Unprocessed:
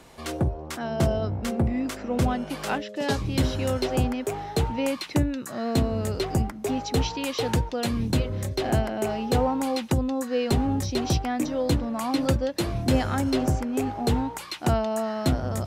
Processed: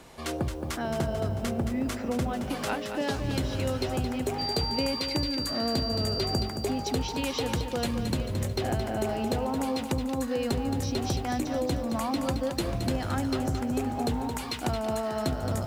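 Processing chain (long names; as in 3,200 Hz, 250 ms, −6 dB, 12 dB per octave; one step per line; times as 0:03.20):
downward compressor, threshold −26 dBFS, peak gain reduction 9.5 dB
0:04.38–0:06.42: steady tone 4,700 Hz −30 dBFS
feedback echo at a low word length 221 ms, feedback 55%, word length 9 bits, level −7.5 dB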